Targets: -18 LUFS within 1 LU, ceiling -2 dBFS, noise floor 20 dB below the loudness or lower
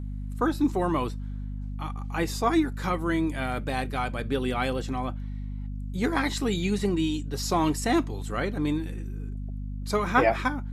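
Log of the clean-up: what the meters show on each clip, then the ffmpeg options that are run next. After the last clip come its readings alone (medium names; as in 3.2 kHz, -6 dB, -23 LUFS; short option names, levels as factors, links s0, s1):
hum 50 Hz; highest harmonic 250 Hz; hum level -31 dBFS; loudness -28.0 LUFS; peak level -7.0 dBFS; loudness target -18.0 LUFS
-> -af "bandreject=f=50:t=h:w=4,bandreject=f=100:t=h:w=4,bandreject=f=150:t=h:w=4,bandreject=f=200:t=h:w=4,bandreject=f=250:t=h:w=4"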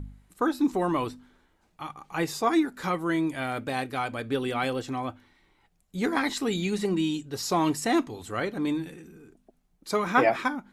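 hum not found; loudness -28.0 LUFS; peak level -7.5 dBFS; loudness target -18.0 LUFS
-> -af "volume=3.16,alimiter=limit=0.794:level=0:latency=1"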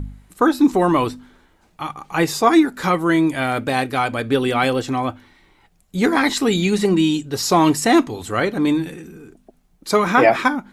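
loudness -18.0 LUFS; peak level -2.0 dBFS; noise floor -58 dBFS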